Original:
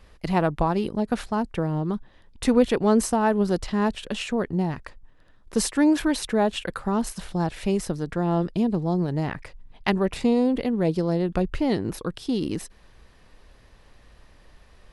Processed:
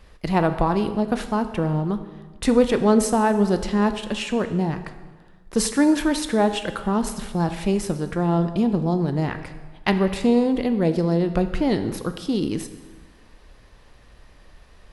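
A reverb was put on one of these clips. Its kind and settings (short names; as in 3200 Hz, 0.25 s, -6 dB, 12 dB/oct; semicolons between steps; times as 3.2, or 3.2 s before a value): plate-style reverb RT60 1.4 s, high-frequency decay 0.8×, DRR 8.5 dB; gain +2 dB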